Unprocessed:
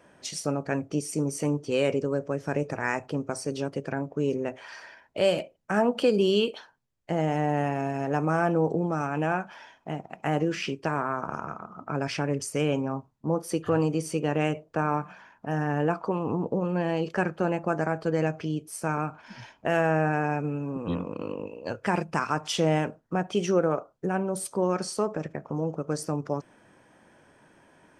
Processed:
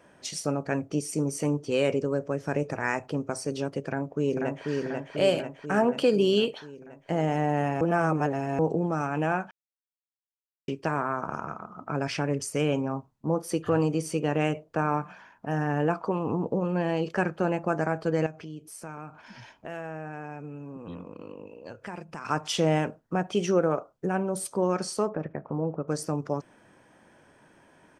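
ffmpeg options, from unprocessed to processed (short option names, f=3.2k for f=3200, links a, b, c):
-filter_complex "[0:a]asplit=2[a][b];[b]afade=t=in:st=3.87:d=0.01,afade=t=out:st=4.67:d=0.01,aecho=0:1:490|980|1470|1960|2450|2940|3430|3920|4410|4900:0.707946|0.460165|0.299107|0.19442|0.126373|0.0821423|0.0533925|0.0347051|0.0225583|0.0146629[c];[a][c]amix=inputs=2:normalize=0,asettb=1/sr,asplit=3[d][e][f];[d]atrim=end=18.264[g];[e]atrim=start=18.26:end=22.25,asetpts=PTS-STARTPTS,afade=t=in:d=0.004:c=qsin,afade=t=out:st=3.986:d=0.004:c=qsin,acompressor=threshold=-44dB:ratio=2:attack=3.2:release=140:knee=1:detection=peak[h];[f]atrim=start=22.246[i];[g][h]acrossfade=d=0.004:c1=hsin:c2=qsin[j];[j][i]acrossfade=d=0.004:c1=qsin:c2=hsin,asettb=1/sr,asplit=3[k][l][m];[k]atrim=end=25.094[n];[l]atrim=start=25.09:end=25.88,asetpts=PTS-STARTPTS,afade=t=in:d=0.004:c=qsin,afade=t=out:st=0.786:d=0.004:c=qsin,lowpass=1.9k[o];[m]atrim=start=25.876[p];[n][o]acrossfade=d=0.004:c1=hsin:c2=qsin[q];[q][p]acrossfade=d=0.004:c1=qsin:c2=hsin,asplit=5[r][s][t][u][v];[r]atrim=end=7.812[w];[s]atrim=start=7.808:end=8.592,asetpts=PTS-STARTPTS,areverse[x];[t]atrim=start=8.588:end=9.51,asetpts=PTS-STARTPTS,afade=t=out:st=0.918:d=0.004:c=hsin[y];[u]atrim=start=9.51:end=10.68,asetpts=PTS-STARTPTS,volume=0[z];[v]atrim=start=10.68,asetpts=PTS-STARTPTS,afade=t=in:d=0.004:c=hsin[aa];[w][x]acrossfade=d=0.004:c1=hsin:c2=hsin[ab];[y][z][aa]concat=n=3:v=0:a=1[ac];[ab][ac]acrossfade=d=0.004:c1=hsin:c2=hsin"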